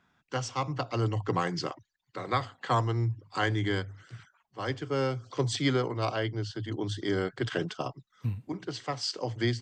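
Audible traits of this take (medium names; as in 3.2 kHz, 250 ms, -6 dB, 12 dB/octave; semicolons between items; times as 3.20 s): noise floor -78 dBFS; spectral tilt -5.0 dB/octave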